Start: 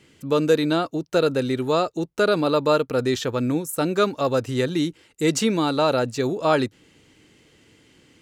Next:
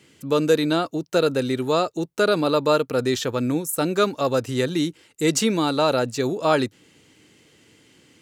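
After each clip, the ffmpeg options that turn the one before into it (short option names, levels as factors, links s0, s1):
-af "highpass=87,highshelf=f=5600:g=5"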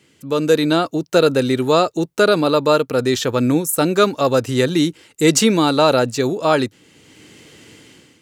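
-af "dynaudnorm=f=180:g=5:m=3.98,volume=0.891"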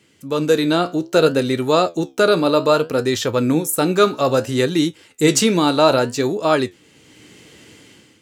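-af "flanger=delay=9.3:depth=7.8:regen=68:speed=0.62:shape=sinusoidal,volume=1.5"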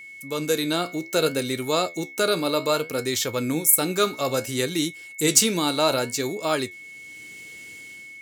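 -af "aemphasis=mode=production:type=75kf,aeval=exprs='val(0)+0.0282*sin(2*PI*2200*n/s)':c=same,volume=0.376"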